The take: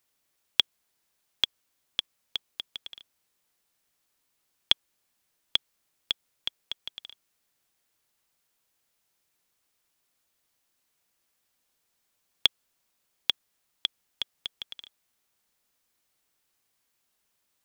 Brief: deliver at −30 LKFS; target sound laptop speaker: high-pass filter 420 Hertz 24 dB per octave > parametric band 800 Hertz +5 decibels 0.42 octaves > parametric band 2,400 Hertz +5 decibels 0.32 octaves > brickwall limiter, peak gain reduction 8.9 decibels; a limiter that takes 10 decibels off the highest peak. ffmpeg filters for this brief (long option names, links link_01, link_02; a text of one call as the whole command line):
ffmpeg -i in.wav -af "alimiter=limit=-12dB:level=0:latency=1,highpass=frequency=420:width=0.5412,highpass=frequency=420:width=1.3066,equalizer=frequency=800:width_type=o:width=0.42:gain=5,equalizer=frequency=2400:width_type=o:width=0.32:gain=5,volume=13.5dB,alimiter=limit=-5.5dB:level=0:latency=1" out.wav